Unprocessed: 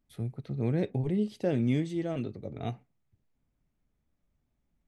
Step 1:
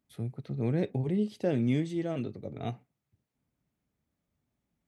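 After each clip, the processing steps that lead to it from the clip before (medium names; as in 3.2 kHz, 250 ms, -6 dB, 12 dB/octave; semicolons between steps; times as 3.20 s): high-pass 85 Hz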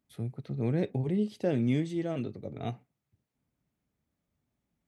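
no audible change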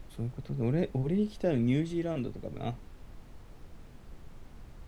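added noise brown -46 dBFS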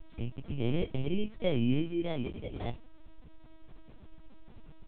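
bit-reversed sample order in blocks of 16 samples; LPC vocoder at 8 kHz pitch kept; endings held to a fixed fall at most 350 dB/s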